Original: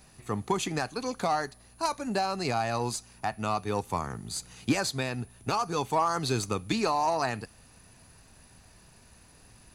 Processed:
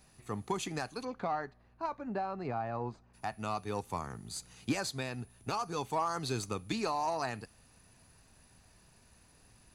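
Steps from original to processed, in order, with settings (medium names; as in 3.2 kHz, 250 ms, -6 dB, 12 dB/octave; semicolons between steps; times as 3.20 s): 1.04–3.13 s: low-pass 2.4 kHz -> 1.2 kHz 12 dB/octave; trim -6.5 dB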